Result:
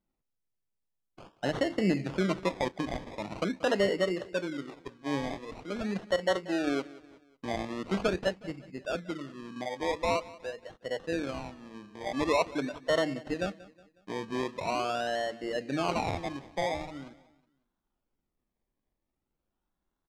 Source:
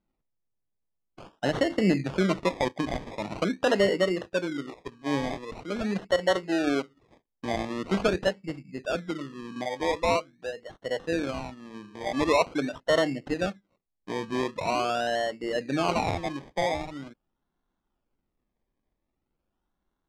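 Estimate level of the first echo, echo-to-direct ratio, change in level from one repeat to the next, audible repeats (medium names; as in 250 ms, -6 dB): -19.5 dB, -18.5 dB, -7.0 dB, 3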